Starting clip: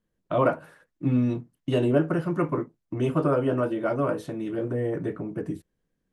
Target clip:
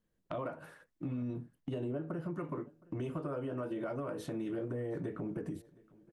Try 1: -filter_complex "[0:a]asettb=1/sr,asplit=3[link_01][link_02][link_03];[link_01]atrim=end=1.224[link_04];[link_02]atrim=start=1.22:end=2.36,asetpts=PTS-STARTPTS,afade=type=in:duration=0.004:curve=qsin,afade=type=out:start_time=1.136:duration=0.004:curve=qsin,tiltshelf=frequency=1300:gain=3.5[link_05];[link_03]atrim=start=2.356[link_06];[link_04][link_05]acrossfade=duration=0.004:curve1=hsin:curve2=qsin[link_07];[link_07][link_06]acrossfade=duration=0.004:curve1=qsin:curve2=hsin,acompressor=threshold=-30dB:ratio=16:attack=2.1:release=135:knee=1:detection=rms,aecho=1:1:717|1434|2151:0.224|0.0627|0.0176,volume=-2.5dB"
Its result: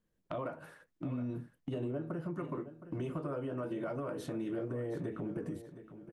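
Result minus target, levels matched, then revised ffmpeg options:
echo-to-direct +10.5 dB
-filter_complex "[0:a]asettb=1/sr,asplit=3[link_01][link_02][link_03];[link_01]atrim=end=1.224[link_04];[link_02]atrim=start=1.22:end=2.36,asetpts=PTS-STARTPTS,afade=type=in:duration=0.004:curve=qsin,afade=type=out:start_time=1.136:duration=0.004:curve=qsin,tiltshelf=frequency=1300:gain=3.5[link_05];[link_03]atrim=start=2.356[link_06];[link_04][link_05]acrossfade=duration=0.004:curve1=hsin:curve2=qsin[link_07];[link_07][link_06]acrossfade=duration=0.004:curve1=qsin:curve2=hsin,acompressor=threshold=-30dB:ratio=16:attack=2.1:release=135:knee=1:detection=rms,aecho=1:1:717|1434:0.0668|0.0187,volume=-2.5dB"

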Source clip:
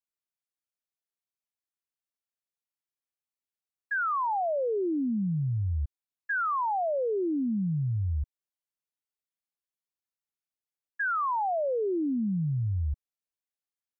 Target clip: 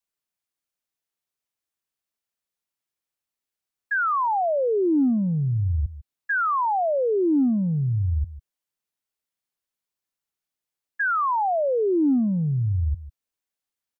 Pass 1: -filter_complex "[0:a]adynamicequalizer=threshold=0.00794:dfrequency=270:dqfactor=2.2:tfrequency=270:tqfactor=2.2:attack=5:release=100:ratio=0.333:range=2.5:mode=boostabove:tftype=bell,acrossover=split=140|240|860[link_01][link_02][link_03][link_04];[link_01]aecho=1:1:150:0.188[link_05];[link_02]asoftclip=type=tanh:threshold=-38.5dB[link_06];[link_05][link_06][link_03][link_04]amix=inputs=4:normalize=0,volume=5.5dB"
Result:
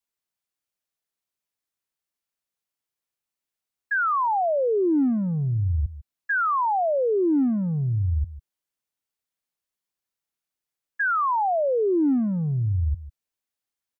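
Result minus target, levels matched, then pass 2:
soft clipping: distortion +7 dB
-filter_complex "[0:a]adynamicequalizer=threshold=0.00794:dfrequency=270:dqfactor=2.2:tfrequency=270:tqfactor=2.2:attack=5:release=100:ratio=0.333:range=2.5:mode=boostabove:tftype=bell,acrossover=split=140|240|860[link_01][link_02][link_03][link_04];[link_01]aecho=1:1:150:0.188[link_05];[link_02]asoftclip=type=tanh:threshold=-32dB[link_06];[link_05][link_06][link_03][link_04]amix=inputs=4:normalize=0,volume=5.5dB"

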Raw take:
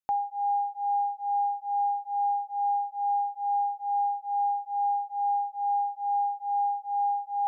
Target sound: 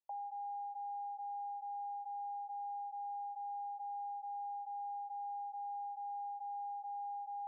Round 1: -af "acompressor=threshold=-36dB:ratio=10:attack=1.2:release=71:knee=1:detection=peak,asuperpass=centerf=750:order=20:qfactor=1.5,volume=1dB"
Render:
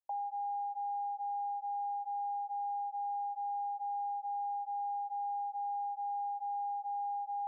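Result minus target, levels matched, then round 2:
downward compressor: peak gain reduction −6 dB
-af "acompressor=threshold=-42.5dB:ratio=10:attack=1.2:release=71:knee=1:detection=peak,asuperpass=centerf=750:order=20:qfactor=1.5,volume=1dB"

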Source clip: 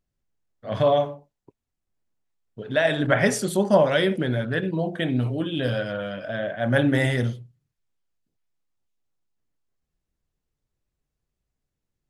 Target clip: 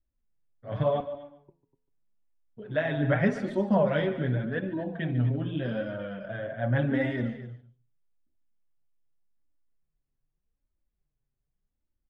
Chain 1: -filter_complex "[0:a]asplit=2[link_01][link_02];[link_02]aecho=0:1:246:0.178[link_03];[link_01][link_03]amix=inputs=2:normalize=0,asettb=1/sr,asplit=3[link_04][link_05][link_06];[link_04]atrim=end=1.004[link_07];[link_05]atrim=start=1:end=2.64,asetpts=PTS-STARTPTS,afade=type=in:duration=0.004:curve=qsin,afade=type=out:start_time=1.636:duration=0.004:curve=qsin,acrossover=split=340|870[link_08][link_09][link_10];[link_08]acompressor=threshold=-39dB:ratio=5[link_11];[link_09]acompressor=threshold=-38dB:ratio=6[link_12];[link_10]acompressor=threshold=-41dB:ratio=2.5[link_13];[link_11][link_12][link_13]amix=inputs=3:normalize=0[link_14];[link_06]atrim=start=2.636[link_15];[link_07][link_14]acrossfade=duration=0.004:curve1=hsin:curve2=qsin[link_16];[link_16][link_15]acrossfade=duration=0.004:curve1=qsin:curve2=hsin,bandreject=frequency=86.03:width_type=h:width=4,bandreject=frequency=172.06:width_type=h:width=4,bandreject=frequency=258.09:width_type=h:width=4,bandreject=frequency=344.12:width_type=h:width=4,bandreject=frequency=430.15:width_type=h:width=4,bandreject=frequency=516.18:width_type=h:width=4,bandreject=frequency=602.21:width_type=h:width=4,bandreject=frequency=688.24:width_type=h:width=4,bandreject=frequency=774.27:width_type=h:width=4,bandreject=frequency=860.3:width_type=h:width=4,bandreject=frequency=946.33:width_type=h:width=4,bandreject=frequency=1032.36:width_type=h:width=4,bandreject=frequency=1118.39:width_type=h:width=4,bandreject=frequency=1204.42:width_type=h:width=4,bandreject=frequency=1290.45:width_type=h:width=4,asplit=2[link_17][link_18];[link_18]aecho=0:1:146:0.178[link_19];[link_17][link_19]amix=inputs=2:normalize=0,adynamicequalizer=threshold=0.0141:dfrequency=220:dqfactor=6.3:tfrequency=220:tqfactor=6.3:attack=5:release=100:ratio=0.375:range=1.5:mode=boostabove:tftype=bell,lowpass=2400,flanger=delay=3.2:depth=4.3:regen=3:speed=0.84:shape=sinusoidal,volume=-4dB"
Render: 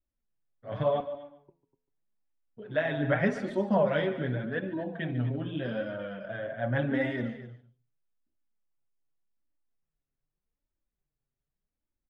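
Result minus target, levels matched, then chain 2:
125 Hz band −3.0 dB
-filter_complex "[0:a]asplit=2[link_01][link_02];[link_02]aecho=0:1:246:0.178[link_03];[link_01][link_03]amix=inputs=2:normalize=0,asettb=1/sr,asplit=3[link_04][link_05][link_06];[link_04]atrim=end=1.004[link_07];[link_05]atrim=start=1:end=2.64,asetpts=PTS-STARTPTS,afade=type=in:duration=0.004:curve=qsin,afade=type=out:start_time=1.636:duration=0.004:curve=qsin,acrossover=split=340|870[link_08][link_09][link_10];[link_08]acompressor=threshold=-39dB:ratio=5[link_11];[link_09]acompressor=threshold=-38dB:ratio=6[link_12];[link_10]acompressor=threshold=-41dB:ratio=2.5[link_13];[link_11][link_12][link_13]amix=inputs=3:normalize=0[link_14];[link_06]atrim=start=2.636[link_15];[link_07][link_14]acrossfade=duration=0.004:curve1=hsin:curve2=qsin[link_16];[link_16][link_15]acrossfade=duration=0.004:curve1=qsin:curve2=hsin,bandreject=frequency=86.03:width_type=h:width=4,bandreject=frequency=172.06:width_type=h:width=4,bandreject=frequency=258.09:width_type=h:width=4,bandreject=frequency=344.12:width_type=h:width=4,bandreject=frequency=430.15:width_type=h:width=4,bandreject=frequency=516.18:width_type=h:width=4,bandreject=frequency=602.21:width_type=h:width=4,bandreject=frequency=688.24:width_type=h:width=4,bandreject=frequency=774.27:width_type=h:width=4,bandreject=frequency=860.3:width_type=h:width=4,bandreject=frequency=946.33:width_type=h:width=4,bandreject=frequency=1032.36:width_type=h:width=4,bandreject=frequency=1118.39:width_type=h:width=4,bandreject=frequency=1204.42:width_type=h:width=4,bandreject=frequency=1290.45:width_type=h:width=4,asplit=2[link_17][link_18];[link_18]aecho=0:1:146:0.178[link_19];[link_17][link_19]amix=inputs=2:normalize=0,adynamicequalizer=threshold=0.0141:dfrequency=220:dqfactor=6.3:tfrequency=220:tqfactor=6.3:attack=5:release=100:ratio=0.375:range=1.5:mode=boostabove:tftype=bell,lowpass=2400,lowshelf=frequency=170:gain=7.5,flanger=delay=3.2:depth=4.3:regen=3:speed=0.84:shape=sinusoidal,volume=-4dB"

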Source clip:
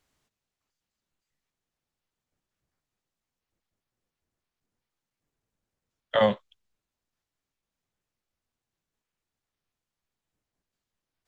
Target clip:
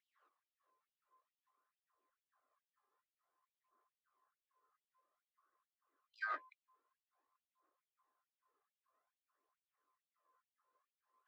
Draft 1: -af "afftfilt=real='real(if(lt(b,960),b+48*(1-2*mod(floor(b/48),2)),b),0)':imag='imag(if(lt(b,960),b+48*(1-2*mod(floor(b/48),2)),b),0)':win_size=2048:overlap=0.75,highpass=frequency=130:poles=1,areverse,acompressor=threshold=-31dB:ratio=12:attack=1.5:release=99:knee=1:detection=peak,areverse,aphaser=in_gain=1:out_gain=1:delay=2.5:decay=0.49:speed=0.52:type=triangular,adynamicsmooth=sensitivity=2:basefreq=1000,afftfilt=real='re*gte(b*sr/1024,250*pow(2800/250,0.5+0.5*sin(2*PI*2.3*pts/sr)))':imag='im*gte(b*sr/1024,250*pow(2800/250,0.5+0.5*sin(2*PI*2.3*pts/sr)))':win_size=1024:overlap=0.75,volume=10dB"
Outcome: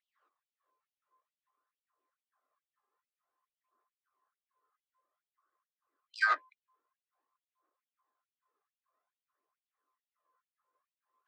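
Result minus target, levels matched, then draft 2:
downward compressor: peak gain reduction −9.5 dB
-af "afftfilt=real='real(if(lt(b,960),b+48*(1-2*mod(floor(b/48),2)),b),0)':imag='imag(if(lt(b,960),b+48*(1-2*mod(floor(b/48),2)),b),0)':win_size=2048:overlap=0.75,highpass=frequency=130:poles=1,areverse,acompressor=threshold=-41.5dB:ratio=12:attack=1.5:release=99:knee=1:detection=peak,areverse,aphaser=in_gain=1:out_gain=1:delay=2.5:decay=0.49:speed=0.52:type=triangular,adynamicsmooth=sensitivity=2:basefreq=1000,afftfilt=real='re*gte(b*sr/1024,250*pow(2800/250,0.5+0.5*sin(2*PI*2.3*pts/sr)))':imag='im*gte(b*sr/1024,250*pow(2800/250,0.5+0.5*sin(2*PI*2.3*pts/sr)))':win_size=1024:overlap=0.75,volume=10dB"

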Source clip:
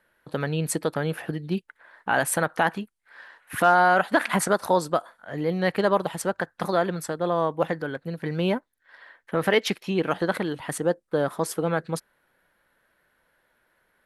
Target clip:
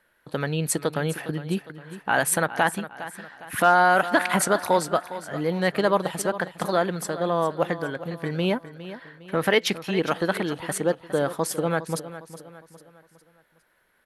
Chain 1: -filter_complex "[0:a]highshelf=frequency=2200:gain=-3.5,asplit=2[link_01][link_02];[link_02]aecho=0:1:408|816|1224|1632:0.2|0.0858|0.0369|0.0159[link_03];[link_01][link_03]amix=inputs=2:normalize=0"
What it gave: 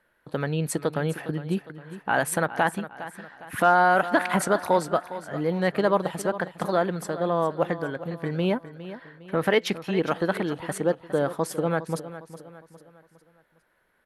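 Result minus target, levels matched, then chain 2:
4,000 Hz band −4.0 dB
-filter_complex "[0:a]highshelf=frequency=2200:gain=3.5,asplit=2[link_01][link_02];[link_02]aecho=0:1:408|816|1224|1632:0.2|0.0858|0.0369|0.0159[link_03];[link_01][link_03]amix=inputs=2:normalize=0"

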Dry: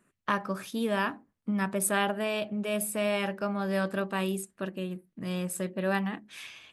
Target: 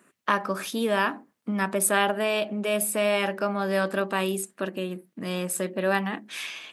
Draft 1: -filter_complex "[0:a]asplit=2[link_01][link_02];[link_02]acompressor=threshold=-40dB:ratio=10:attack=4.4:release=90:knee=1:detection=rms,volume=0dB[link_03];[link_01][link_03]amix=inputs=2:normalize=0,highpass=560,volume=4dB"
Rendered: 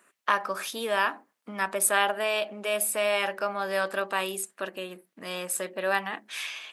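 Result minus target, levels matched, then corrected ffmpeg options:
250 Hz band −10.5 dB
-filter_complex "[0:a]asplit=2[link_01][link_02];[link_02]acompressor=threshold=-40dB:ratio=10:attack=4.4:release=90:knee=1:detection=rms,volume=0dB[link_03];[link_01][link_03]amix=inputs=2:normalize=0,highpass=240,volume=4dB"

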